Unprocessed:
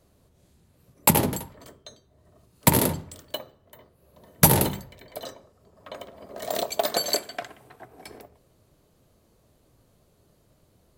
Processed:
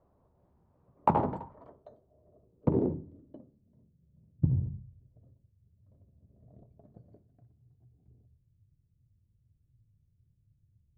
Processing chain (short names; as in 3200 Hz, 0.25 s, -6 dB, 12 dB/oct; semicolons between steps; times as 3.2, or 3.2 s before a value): low-pass sweep 960 Hz -> 110 Hz, 1.54–4.58; Doppler distortion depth 0.62 ms; gain -7.5 dB